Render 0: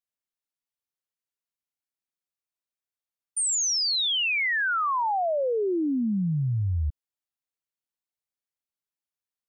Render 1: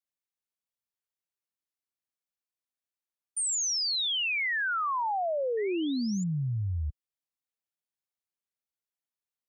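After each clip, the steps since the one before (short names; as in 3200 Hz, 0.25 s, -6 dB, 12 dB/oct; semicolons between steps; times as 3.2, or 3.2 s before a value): HPF 42 Hz 6 dB/oct; painted sound rise, 5.57–6.24, 1800–7300 Hz -40 dBFS; gain -4 dB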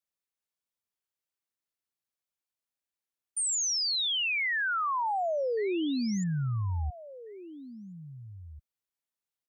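outdoor echo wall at 290 m, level -15 dB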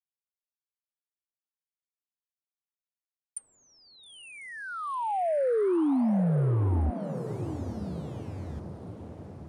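bit-crush 10-bit; treble ducked by the level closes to 670 Hz, closed at -27 dBFS; diffused feedback echo 0.904 s, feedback 60%, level -11 dB; gain +5 dB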